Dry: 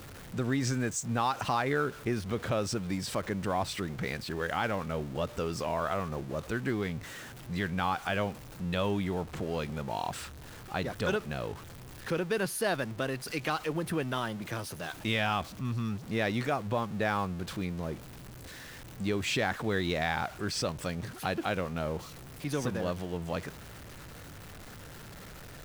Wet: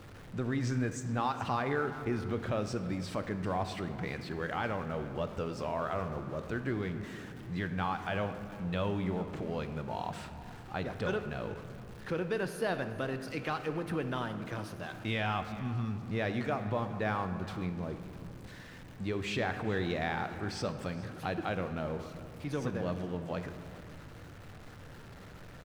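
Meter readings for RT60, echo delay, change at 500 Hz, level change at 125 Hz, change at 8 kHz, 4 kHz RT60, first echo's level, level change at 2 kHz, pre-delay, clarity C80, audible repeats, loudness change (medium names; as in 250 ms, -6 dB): 2.3 s, 419 ms, -2.5 dB, -1.5 dB, -11.0 dB, 1.1 s, -19.0 dB, -4.0 dB, 7 ms, 10.0 dB, 1, -3.0 dB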